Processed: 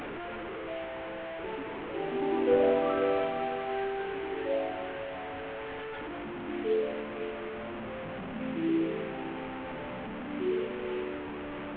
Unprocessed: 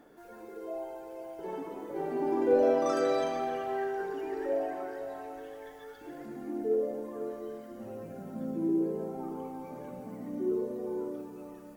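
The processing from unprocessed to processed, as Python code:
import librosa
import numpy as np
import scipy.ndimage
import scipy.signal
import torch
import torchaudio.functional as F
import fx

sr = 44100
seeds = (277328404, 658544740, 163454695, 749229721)

y = fx.delta_mod(x, sr, bps=16000, step_db=-32.5)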